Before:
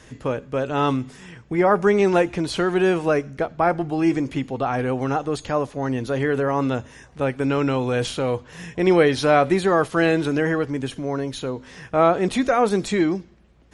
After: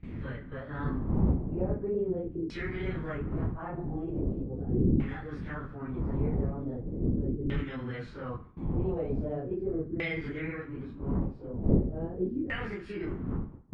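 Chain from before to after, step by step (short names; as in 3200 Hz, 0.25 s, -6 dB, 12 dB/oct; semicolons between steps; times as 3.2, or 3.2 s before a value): phase scrambler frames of 0.1 s; wind noise 260 Hz -21 dBFS; gate with hold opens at -22 dBFS; passive tone stack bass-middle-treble 6-0-2; in parallel at -0.5 dB: compressor, threshold -39 dBFS, peak gain reduction 18.5 dB; on the sum: formant shift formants +4 st; narrowing echo 71 ms, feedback 56%, band-pass 1700 Hz, level -12.5 dB; LFO low-pass saw down 0.4 Hz 330–2400 Hz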